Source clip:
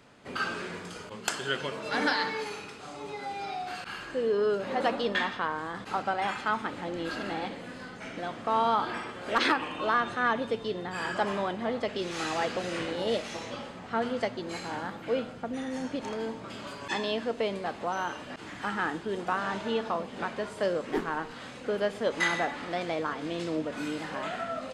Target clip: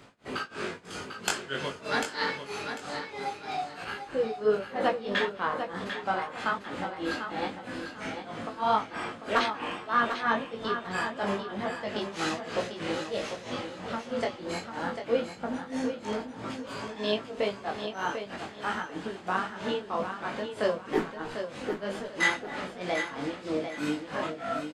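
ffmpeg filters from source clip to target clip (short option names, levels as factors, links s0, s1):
-filter_complex "[0:a]asettb=1/sr,asplit=3[s0][s1][s2];[s0]atrim=end=3.734[s3];[s1]atrim=start=3.73:end=4.9,asetpts=PTS-STARTPTS,afade=t=in:d=0.004:c=qsin,afade=t=out:st=1.166:d=0.004:c=qsin,equalizer=f=5700:t=o:w=2.1:g=-4.5[s4];[s2]atrim=start=4.896[s5];[s3][s4]acrossfade=d=0.004:c1=hsin:c2=qsin[s6];[s6][s5]acrossfade=d=0.004:c1=qsin:c2=hsin,asplit=2[s7][s8];[s8]acompressor=threshold=0.0158:ratio=6,volume=0.794[s9];[s7][s9]amix=inputs=2:normalize=0,flanger=delay=7.8:depth=8.3:regen=-56:speed=1.7:shape=triangular,tremolo=f=3.1:d=0.96,flanger=delay=18.5:depth=3.4:speed=0.24,asplit=2[s10][s11];[s11]aecho=0:1:746|1492|2238:0.398|0.107|0.029[s12];[s10][s12]amix=inputs=2:normalize=0,volume=2.37"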